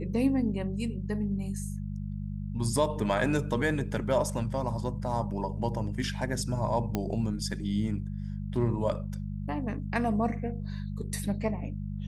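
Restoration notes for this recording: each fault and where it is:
hum 50 Hz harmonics 4 -35 dBFS
6.95 pop -15 dBFS

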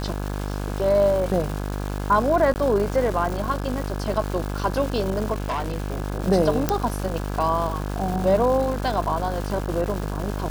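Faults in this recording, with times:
buzz 50 Hz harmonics 34 -28 dBFS
crackle 570/s -29 dBFS
2.54–2.56 gap 19 ms
5.32–6 clipped -22 dBFS
6.69 pop -5 dBFS

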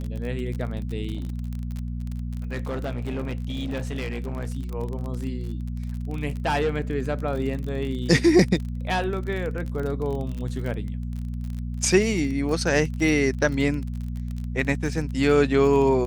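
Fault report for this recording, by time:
crackle 34/s -30 dBFS
hum 60 Hz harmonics 4 -30 dBFS
1.15–4.5 clipped -24.5 dBFS

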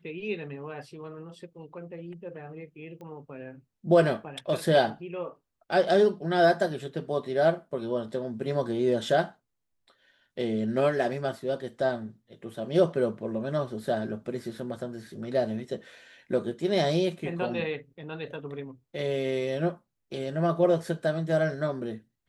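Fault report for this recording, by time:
3.01 pop -34 dBFS

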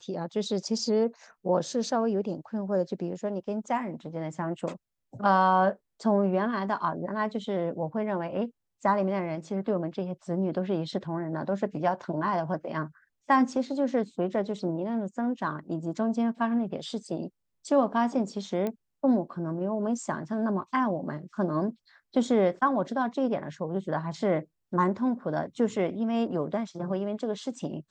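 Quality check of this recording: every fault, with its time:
18.67 pop -19 dBFS

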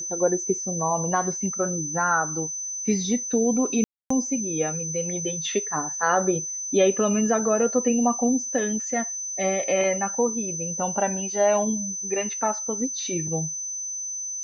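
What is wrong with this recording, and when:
tone 6100 Hz -29 dBFS
3.84–4.1 gap 0.264 s

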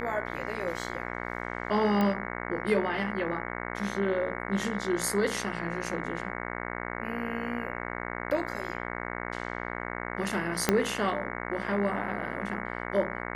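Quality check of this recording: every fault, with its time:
buzz 60 Hz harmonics 37 -36 dBFS
2.01 pop -16 dBFS
10.69 pop -7 dBFS

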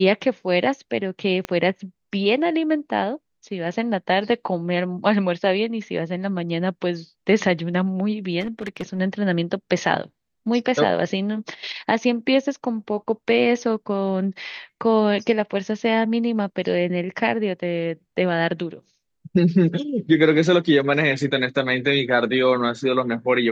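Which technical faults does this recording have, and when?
1.45 pop -12 dBFS
8.4–9 clipped -22.5 dBFS

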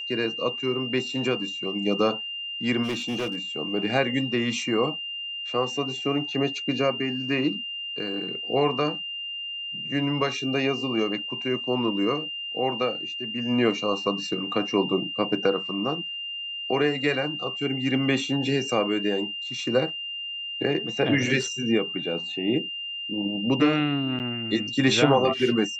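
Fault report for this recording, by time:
tone 2800 Hz -31 dBFS
2.83–3.39 clipped -24.5 dBFS
24.19–24.2 gap 8.9 ms

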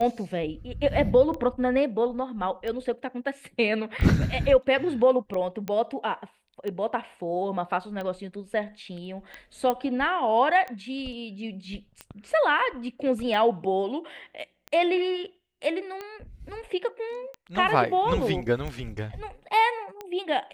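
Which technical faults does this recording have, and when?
tick 45 rpm -22 dBFS
5.68 pop -18 dBFS
9.7 pop -13 dBFS

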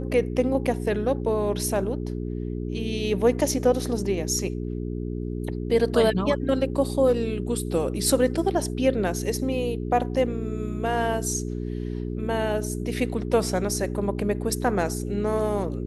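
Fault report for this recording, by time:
hum 60 Hz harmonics 7 -30 dBFS

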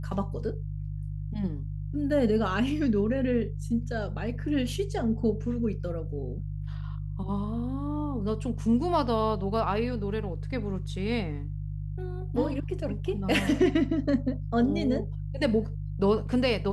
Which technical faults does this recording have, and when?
hum 50 Hz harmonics 3 -34 dBFS

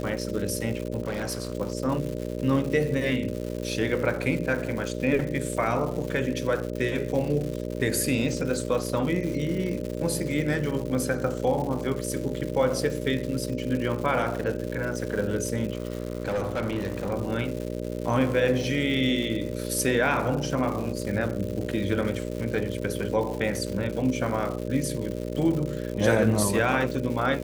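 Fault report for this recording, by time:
buzz 60 Hz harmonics 10 -32 dBFS
crackle 220/s -32 dBFS
1.03–1.53 clipped -25 dBFS
15.72–17.13 clipped -23.5 dBFS

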